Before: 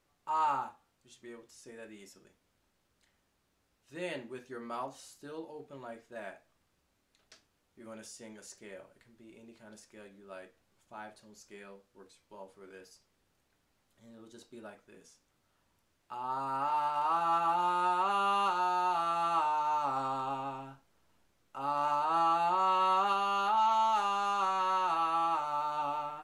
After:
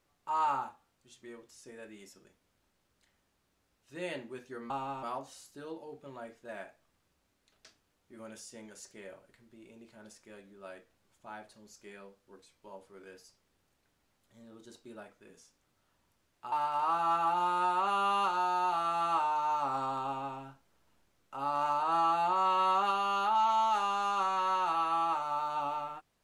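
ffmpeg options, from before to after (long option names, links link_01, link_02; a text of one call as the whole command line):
ffmpeg -i in.wav -filter_complex "[0:a]asplit=4[link_01][link_02][link_03][link_04];[link_01]atrim=end=4.702[link_05];[link_02]atrim=start=20.268:end=20.602[link_06];[link_03]atrim=start=4.698:end=16.192[link_07];[link_04]atrim=start=16.738[link_08];[link_05][link_06]acrossfade=duration=0.004:curve1=hsin:curve2=hsin[link_09];[link_09][link_07]acrossfade=duration=0.004:curve1=hsin:curve2=hsin[link_10];[link_10][link_08]acrossfade=duration=0.004:curve1=hsin:curve2=hsin" out.wav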